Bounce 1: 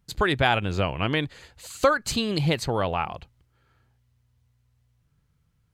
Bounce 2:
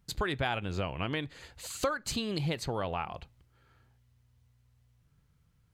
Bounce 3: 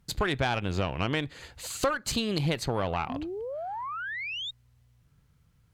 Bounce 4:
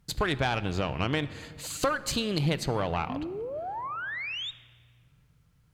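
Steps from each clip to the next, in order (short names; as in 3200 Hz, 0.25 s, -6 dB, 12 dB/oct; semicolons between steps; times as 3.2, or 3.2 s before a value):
compressor 2:1, threshold -36 dBFS, peak gain reduction 12 dB; on a send at -20.5 dB: reverb RT60 0.40 s, pre-delay 3 ms
painted sound rise, 3.09–4.51, 240–3800 Hz -39 dBFS; tube stage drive 23 dB, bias 0.55; gain +6.5 dB
shoebox room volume 3200 m³, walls mixed, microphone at 0.45 m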